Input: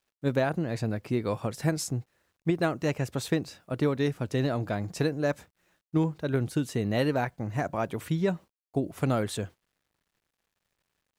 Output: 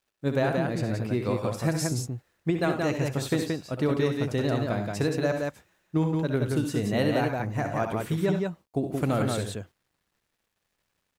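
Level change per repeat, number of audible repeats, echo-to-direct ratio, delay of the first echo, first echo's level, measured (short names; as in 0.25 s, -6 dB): no steady repeat, 3, -1.5 dB, 64 ms, -9.0 dB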